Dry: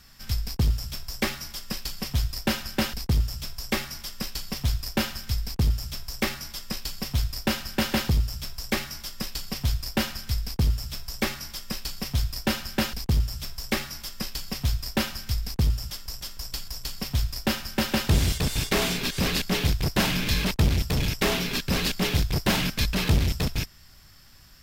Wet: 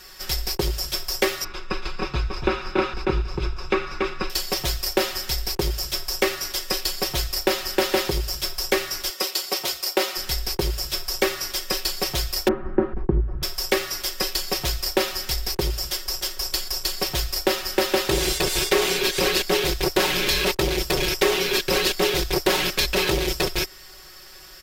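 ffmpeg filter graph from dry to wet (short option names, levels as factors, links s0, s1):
-filter_complex "[0:a]asettb=1/sr,asplit=3[s0][s1][s2];[s0]atrim=end=1.444[s3];[s1]atrim=start=1.44:end=4.3,asetpts=PTS-STARTPTS,afade=t=in:d=0.004:c=qsin,afade=t=out:st=2.856:d=0.004:c=qsin,lowpass=2200,aecho=1:1:0.8:0.53,atrim=end_sample=126126,aecho=1:1:283:0.473,atrim=end_sample=126126[s4];[s2]atrim=start=4.296[s5];[s3][s4]acrossfade=d=0.004:c1=hsin:c2=qsin[s6];[s6][s5]acrossfade=d=0.004:c1=qsin:c2=hsin,asettb=1/sr,asplit=3[s7][s8][s9];[s7]atrim=end=9.104[s10];[s8]atrim=start=9.1:end=10.17,asetpts=PTS-STARTPTS,afade=t=in:d=0.004:c=qsin,afade=t=out:st=1.066:d=0.004:c=qsin,highpass=310,bandreject=f=1700:w=16[s11];[s9]atrim=start=10.166[s12];[s10][s11]acrossfade=d=0.004:c1=hsin:c2=qsin[s13];[s13][s12]acrossfade=d=0.004:c1=qsin:c2=hsin,asettb=1/sr,asplit=3[s14][s15][s16];[s14]atrim=end=12.484[s17];[s15]atrim=start=12.48:end=13.43,asetpts=PTS-STARTPTS,afade=t=in:d=0.004:c=qsin,afade=t=out:st=0.946:d=0.004:c=qsin,lowpass=f=1400:w=0.5412,lowpass=f=1400:w=1.3066,lowshelf=f=390:t=q:w=1.5:g=9.5[s18];[s16]atrim=start=13.426[s19];[s17][s18]acrossfade=d=0.004:c1=hsin:c2=qsin[s20];[s20][s19]acrossfade=d=0.004:c1=qsin:c2=hsin,lowshelf=f=280:t=q:w=3:g=-9,aecho=1:1:5.4:0.82,acompressor=threshold=0.0398:ratio=2.5,volume=2.51"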